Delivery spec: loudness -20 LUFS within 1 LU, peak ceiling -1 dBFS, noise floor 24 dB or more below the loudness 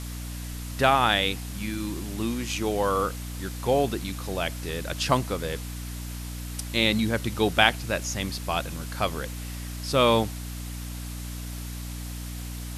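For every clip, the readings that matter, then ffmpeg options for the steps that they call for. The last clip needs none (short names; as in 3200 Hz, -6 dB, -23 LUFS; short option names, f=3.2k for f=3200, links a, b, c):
hum 60 Hz; harmonics up to 300 Hz; hum level -33 dBFS; noise floor -35 dBFS; noise floor target -52 dBFS; loudness -27.5 LUFS; peak -2.0 dBFS; loudness target -20.0 LUFS
-> -af "bandreject=f=60:t=h:w=4,bandreject=f=120:t=h:w=4,bandreject=f=180:t=h:w=4,bandreject=f=240:t=h:w=4,bandreject=f=300:t=h:w=4"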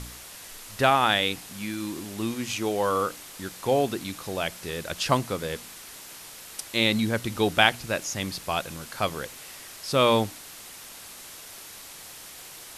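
hum none; noise floor -44 dBFS; noise floor target -50 dBFS
-> -af "afftdn=nr=6:nf=-44"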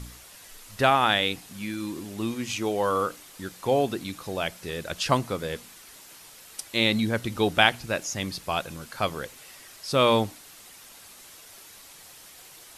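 noise floor -49 dBFS; noise floor target -50 dBFS
-> -af "afftdn=nr=6:nf=-49"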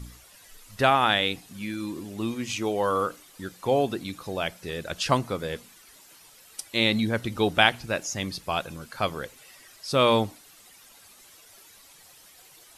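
noise floor -53 dBFS; loudness -26.0 LUFS; peak -2.0 dBFS; loudness target -20.0 LUFS
-> -af "volume=6dB,alimiter=limit=-1dB:level=0:latency=1"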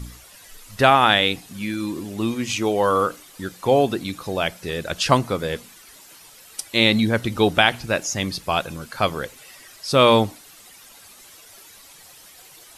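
loudness -20.5 LUFS; peak -1.0 dBFS; noise floor -47 dBFS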